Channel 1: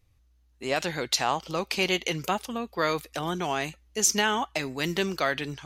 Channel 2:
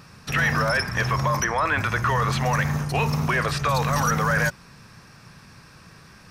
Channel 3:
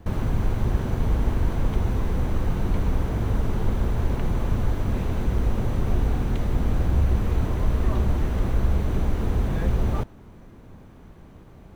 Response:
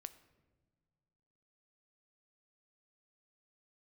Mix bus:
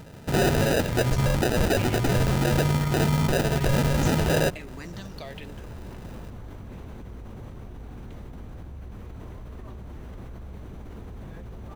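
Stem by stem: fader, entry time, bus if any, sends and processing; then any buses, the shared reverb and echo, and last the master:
-2.0 dB, 0.00 s, bus A, no send, endless phaser -1.1 Hz
+2.5 dB, 0.00 s, no bus, no send, sample-rate reducer 1100 Hz, jitter 0%
-16.0 dB, 1.75 s, bus A, no send, HPF 44 Hz 6 dB/oct; fast leveller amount 100%
bus A: 0.0 dB, compressor, threshold -36 dBFS, peak gain reduction 15 dB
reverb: off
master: limiter -15 dBFS, peak gain reduction 5 dB

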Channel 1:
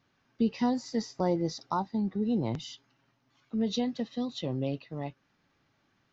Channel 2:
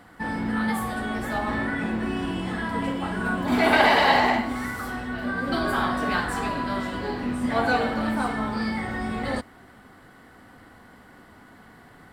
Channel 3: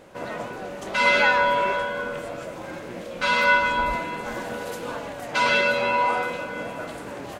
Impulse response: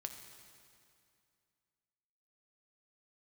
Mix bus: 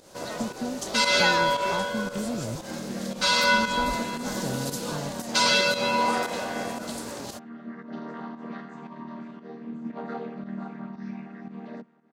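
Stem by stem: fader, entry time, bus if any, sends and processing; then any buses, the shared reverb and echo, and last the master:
-5.0 dB, 0.00 s, no send, tilt -3 dB/oct; compressor, threshold -24 dBFS, peak gain reduction 8.5 dB
-10.0 dB, 2.40 s, no send, chord vocoder major triad, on D#3; elliptic high-pass 150 Hz
-2.0 dB, 0.00 s, no send, resonant high shelf 3400 Hz +11 dB, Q 1.5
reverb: off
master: pump 115 bpm, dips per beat 1, -10 dB, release 0.124 s

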